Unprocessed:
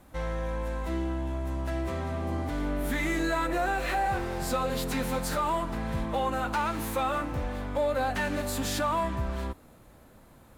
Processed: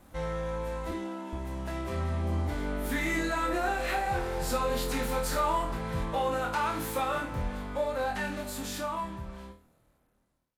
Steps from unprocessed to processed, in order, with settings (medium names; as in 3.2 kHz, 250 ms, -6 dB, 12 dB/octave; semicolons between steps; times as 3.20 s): fade out at the end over 3.45 s; 0.91–1.33 s: elliptic high-pass 210 Hz; flutter echo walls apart 4.3 m, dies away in 0.33 s; trim -2 dB; SBC 128 kbps 48 kHz